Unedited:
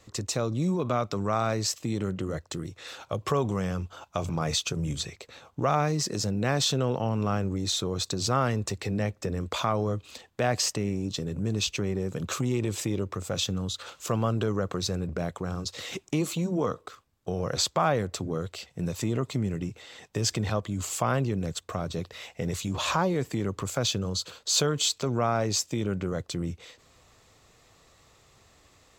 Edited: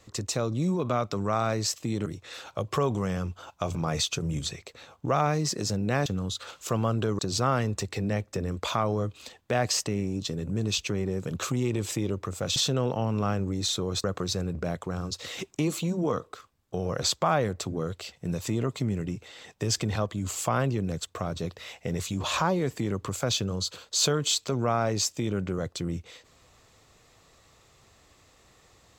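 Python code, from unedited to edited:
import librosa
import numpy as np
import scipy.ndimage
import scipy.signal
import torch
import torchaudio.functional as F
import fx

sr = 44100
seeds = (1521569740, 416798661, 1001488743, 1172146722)

y = fx.edit(x, sr, fx.cut(start_s=2.06, length_s=0.54),
    fx.swap(start_s=6.6, length_s=1.48, other_s=13.45, other_length_s=1.13), tone=tone)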